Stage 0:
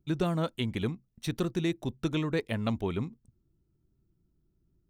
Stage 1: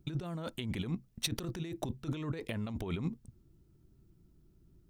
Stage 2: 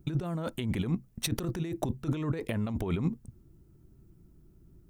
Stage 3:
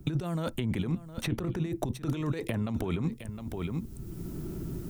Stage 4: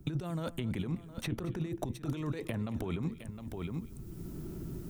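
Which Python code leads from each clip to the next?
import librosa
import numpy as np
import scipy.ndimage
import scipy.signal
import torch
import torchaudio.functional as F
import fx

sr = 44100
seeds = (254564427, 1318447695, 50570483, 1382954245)

y1 = fx.over_compress(x, sr, threshold_db=-38.0, ratio=-1.0)
y1 = F.gain(torch.from_numpy(y1), 1.0).numpy()
y2 = fx.peak_eq(y1, sr, hz=3900.0, db=-6.5, octaves=1.6)
y2 = F.gain(torch.from_numpy(y2), 6.0).numpy()
y3 = y2 + 10.0 ** (-14.5 / 20.0) * np.pad(y2, (int(712 * sr / 1000.0), 0))[:len(y2)]
y3 = fx.band_squash(y3, sr, depth_pct=100)
y4 = y3 + 10.0 ** (-18.0 / 20.0) * np.pad(y3, (int(227 * sr / 1000.0), 0))[:len(y3)]
y4 = F.gain(torch.from_numpy(y4), -4.5).numpy()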